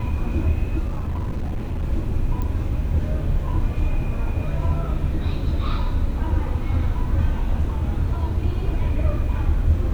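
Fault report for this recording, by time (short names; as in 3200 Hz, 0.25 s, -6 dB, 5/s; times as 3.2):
0.88–1.84 clipped -21.5 dBFS
2.42 pop -16 dBFS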